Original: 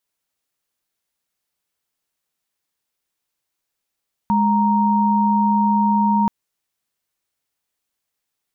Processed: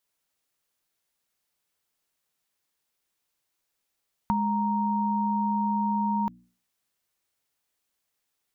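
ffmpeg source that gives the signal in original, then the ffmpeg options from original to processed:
-f lavfi -i "aevalsrc='0.15*(sin(2*PI*207.65*t)+sin(2*PI*932.33*t))':d=1.98:s=44100"
-af "bandreject=f=60:t=h:w=6,bandreject=f=120:t=h:w=6,bandreject=f=180:t=h:w=6,bandreject=f=240:t=h:w=6,bandreject=f=300:t=h:w=6,acompressor=threshold=0.0631:ratio=6"

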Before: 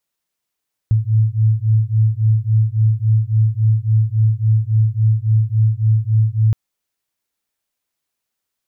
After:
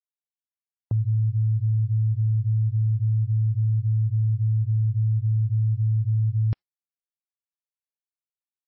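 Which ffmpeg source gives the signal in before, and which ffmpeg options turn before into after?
-f lavfi -i "aevalsrc='0.178*(sin(2*PI*108*t)+sin(2*PI*111.6*t))':d=5.62:s=44100"
-af "agate=range=0.00631:threshold=0.0631:ratio=16:detection=peak,alimiter=limit=0.133:level=0:latency=1:release=11" -ar 24000 -c:a libmp3lame -b:a 16k

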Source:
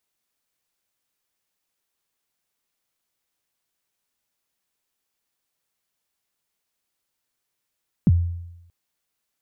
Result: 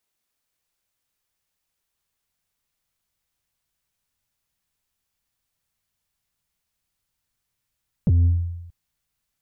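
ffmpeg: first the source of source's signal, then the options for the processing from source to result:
-f lavfi -i "aevalsrc='0.316*pow(10,-3*t/0.9)*sin(2*PI*(240*0.035/log(86/240)*(exp(log(86/240)*min(t,0.035)/0.035)-1)+86*max(t-0.035,0)))':d=0.63:s=44100"
-af "asubboost=boost=5:cutoff=150,alimiter=limit=0.299:level=0:latency=1:release=31,asoftclip=type=tanh:threshold=0.224"

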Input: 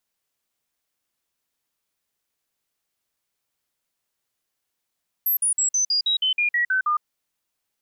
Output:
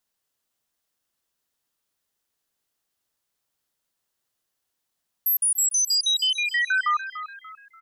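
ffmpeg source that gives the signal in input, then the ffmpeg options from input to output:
-f lavfi -i "aevalsrc='0.126*clip(min(mod(t,0.16),0.11-mod(t,0.16))/0.005,0,1)*sin(2*PI*12200*pow(2,-floor(t/0.16)/3)*mod(t,0.16))':d=1.76:s=44100"
-filter_complex "[0:a]equalizer=f=2300:t=o:w=0.27:g=-5,asplit=2[s0][s1];[s1]asplit=4[s2][s3][s4][s5];[s2]adelay=291,afreqshift=38,volume=0.251[s6];[s3]adelay=582,afreqshift=76,volume=0.0955[s7];[s4]adelay=873,afreqshift=114,volume=0.0363[s8];[s5]adelay=1164,afreqshift=152,volume=0.0138[s9];[s6][s7][s8][s9]amix=inputs=4:normalize=0[s10];[s0][s10]amix=inputs=2:normalize=0"

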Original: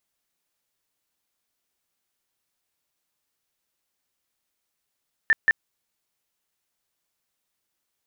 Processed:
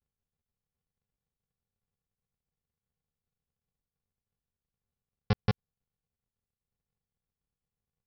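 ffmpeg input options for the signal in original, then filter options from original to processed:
-f lavfi -i "aevalsrc='0.211*sin(2*PI*1780*mod(t,0.18))*lt(mod(t,0.18),52/1780)':d=0.36:s=44100"
-af "lowpass=f=1100:p=1,aresample=11025,acrusher=samples=35:mix=1:aa=0.000001,aresample=44100"

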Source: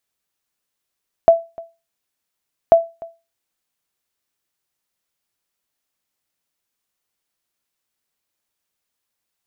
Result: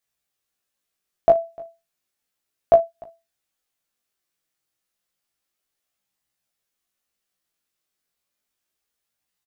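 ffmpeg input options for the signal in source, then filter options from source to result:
-f lavfi -i "aevalsrc='0.841*(sin(2*PI*667*mod(t,1.44))*exp(-6.91*mod(t,1.44)/0.27)+0.0668*sin(2*PI*667*max(mod(t,1.44)-0.3,0))*exp(-6.91*max(mod(t,1.44)-0.3,0)/0.27))':d=2.88:s=44100"
-filter_complex "[0:a]bandreject=f=960:w=11,flanger=delay=17:depth=5.4:speed=0.32,asplit=2[s0][s1];[s1]aecho=0:1:16|54:0.668|0.15[s2];[s0][s2]amix=inputs=2:normalize=0"

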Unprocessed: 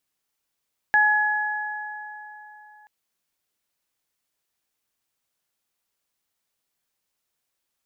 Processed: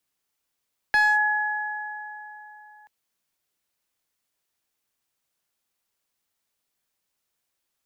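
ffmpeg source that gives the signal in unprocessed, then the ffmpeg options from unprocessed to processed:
-f lavfi -i "aevalsrc='0.1*pow(10,-3*t/3.76)*sin(2*PI*845*t)+0.188*pow(10,-3*t/2.96)*sin(2*PI*1690*t)':d=1.93:s=44100"
-filter_complex "[0:a]acrossover=split=210|270|570[s0][s1][s2][s3];[s3]volume=6.68,asoftclip=hard,volume=0.15[s4];[s0][s1][s2][s4]amix=inputs=4:normalize=0"

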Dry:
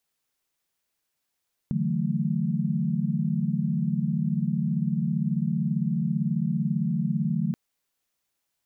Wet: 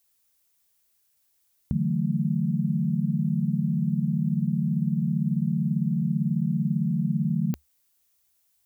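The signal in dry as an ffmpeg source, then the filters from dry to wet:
-f lavfi -i "aevalsrc='0.0376*(sin(2*PI*146.83*t)+sin(2*PI*164.81*t)+sin(2*PI*185*t)+sin(2*PI*220*t))':d=5.83:s=44100"
-af "equalizer=f=71:t=o:w=0.61:g=14,crystalizer=i=2:c=0"

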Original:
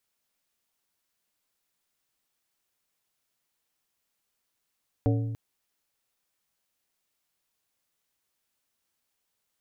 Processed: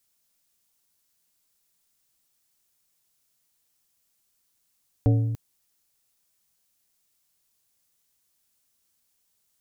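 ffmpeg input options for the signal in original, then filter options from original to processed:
-f lavfi -i "aevalsrc='0.0944*pow(10,-3*t/1.5)*sin(2*PI*113*t)+0.0631*pow(10,-3*t/0.79)*sin(2*PI*282.5*t)+0.0422*pow(10,-3*t/0.568)*sin(2*PI*452*t)+0.0282*pow(10,-3*t/0.486)*sin(2*PI*565*t)+0.0188*pow(10,-3*t/0.405)*sin(2*PI*734.5*t)':d=0.29:s=44100"
-af "bass=f=250:g=6,treble=f=4000:g=9"

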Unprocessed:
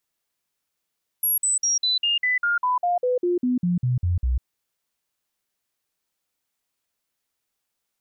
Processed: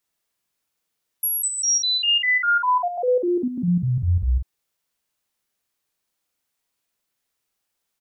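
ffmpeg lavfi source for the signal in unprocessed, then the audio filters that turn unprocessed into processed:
-f lavfi -i "aevalsrc='0.119*clip(min(mod(t,0.2),0.15-mod(t,0.2))/0.005,0,1)*sin(2*PI*11300*pow(2,-floor(t/0.2)/2)*mod(t,0.2))':d=3.2:s=44100"
-filter_complex "[0:a]asplit=2[s0][s1];[s1]adelay=46,volume=0.631[s2];[s0][s2]amix=inputs=2:normalize=0"

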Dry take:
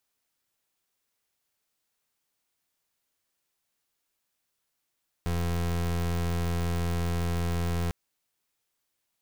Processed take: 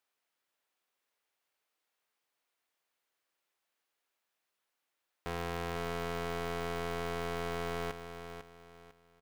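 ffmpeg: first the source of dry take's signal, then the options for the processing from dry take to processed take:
-f lavfi -i "aevalsrc='0.0398*(2*lt(mod(85.4*t,1),0.29)-1)':d=2.65:s=44100"
-filter_complex "[0:a]bass=f=250:g=-15,treble=f=4000:g=-9,asplit=2[s0][s1];[s1]aecho=0:1:499|998|1497|1996:0.355|0.11|0.0341|0.0106[s2];[s0][s2]amix=inputs=2:normalize=0"

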